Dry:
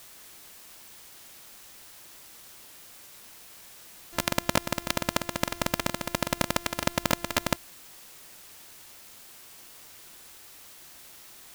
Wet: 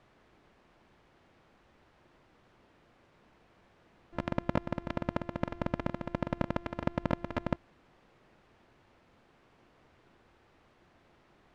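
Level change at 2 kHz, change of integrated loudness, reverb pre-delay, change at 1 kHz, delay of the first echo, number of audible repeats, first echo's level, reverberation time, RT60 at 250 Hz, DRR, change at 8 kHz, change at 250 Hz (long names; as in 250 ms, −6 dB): −11.5 dB, −6.5 dB, no reverb audible, −7.0 dB, no echo audible, no echo audible, no echo audible, no reverb audible, no reverb audible, no reverb audible, below −30 dB, −1.5 dB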